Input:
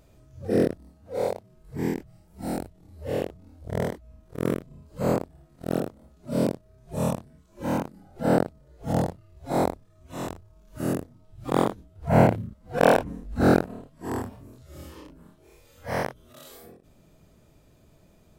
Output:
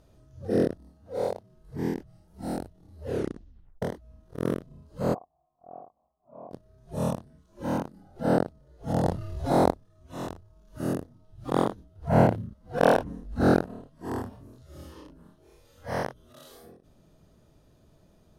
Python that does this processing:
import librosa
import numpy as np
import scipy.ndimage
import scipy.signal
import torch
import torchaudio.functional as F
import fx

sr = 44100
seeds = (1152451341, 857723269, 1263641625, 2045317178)

y = fx.formant_cascade(x, sr, vowel='a', at=(5.13, 6.51), fade=0.02)
y = fx.env_flatten(y, sr, amount_pct=50, at=(9.03, 9.7), fade=0.02)
y = fx.edit(y, sr, fx.tape_stop(start_s=3.05, length_s=0.77), tone=tone)
y = scipy.signal.sosfilt(scipy.signal.bessel(2, 11000.0, 'lowpass', norm='mag', fs=sr, output='sos'), y)
y = fx.peak_eq(y, sr, hz=2300.0, db=-7.5, octaves=0.35)
y = fx.notch(y, sr, hz=7600.0, q=6.6)
y = y * librosa.db_to_amplitude(-2.0)